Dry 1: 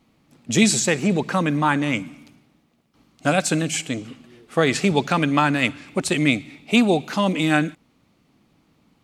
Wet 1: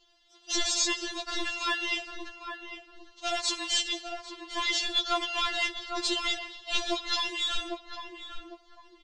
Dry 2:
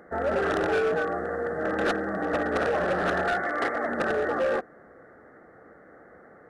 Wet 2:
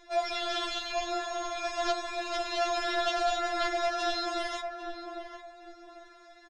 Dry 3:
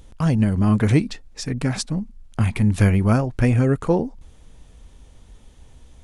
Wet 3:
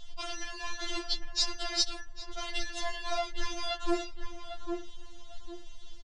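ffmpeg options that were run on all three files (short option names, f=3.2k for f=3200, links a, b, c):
-filter_complex "[0:a]asuperstop=centerf=2400:order=20:qfactor=4.9,bandreject=f=50:t=h:w=6,bandreject=f=100:t=h:w=6,bandreject=f=150:t=h:w=6,asplit=2[a][b];[b]acrusher=samples=29:mix=1:aa=0.000001,volume=-5.5dB[c];[a][c]amix=inputs=2:normalize=0,acompressor=threshold=-22dB:ratio=2,highshelf=f=2.4k:t=q:w=1.5:g=8,asoftclip=type=hard:threshold=-16dB,lowpass=f=6k:w=0.5412,lowpass=f=6k:w=1.3066,equalizer=f=310:w=2.2:g=-14,asplit=2[d][e];[e]adelay=802,lowpass=f=1.1k:p=1,volume=-4.5dB,asplit=2[f][g];[g]adelay=802,lowpass=f=1.1k:p=1,volume=0.33,asplit=2[h][i];[i]adelay=802,lowpass=f=1.1k:p=1,volume=0.33,asplit=2[j][k];[k]adelay=802,lowpass=f=1.1k:p=1,volume=0.33[l];[f][h][j][l]amix=inputs=4:normalize=0[m];[d][m]amix=inputs=2:normalize=0,afftfilt=real='re*4*eq(mod(b,16),0)':imag='im*4*eq(mod(b,16),0)':win_size=2048:overlap=0.75"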